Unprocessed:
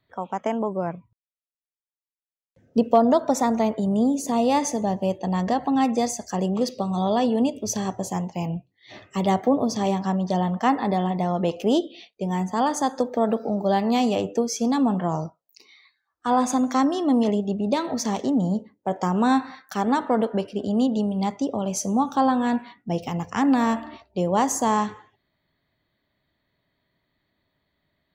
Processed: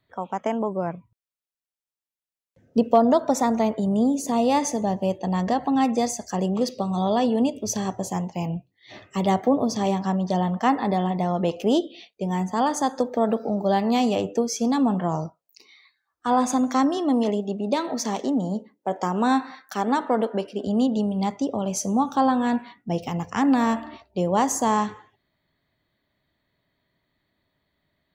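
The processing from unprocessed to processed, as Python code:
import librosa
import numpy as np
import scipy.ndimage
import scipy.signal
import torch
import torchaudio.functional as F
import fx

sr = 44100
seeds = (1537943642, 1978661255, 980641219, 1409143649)

y = fx.highpass(x, sr, hz=210.0, slope=12, at=(16.97, 20.67))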